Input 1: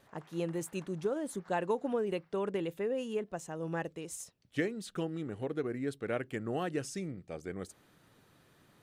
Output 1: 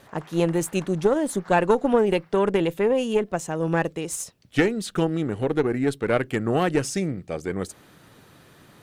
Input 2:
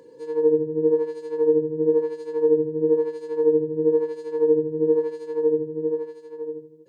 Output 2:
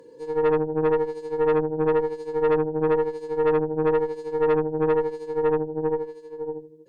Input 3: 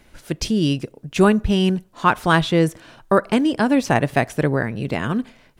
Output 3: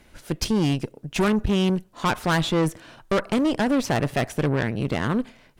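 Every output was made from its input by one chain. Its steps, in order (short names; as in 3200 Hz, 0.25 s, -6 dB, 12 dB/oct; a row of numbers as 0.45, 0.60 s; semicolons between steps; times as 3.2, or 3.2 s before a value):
tube stage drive 20 dB, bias 0.7; match loudness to -24 LUFS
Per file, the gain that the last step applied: +16.5, +4.0, +2.5 dB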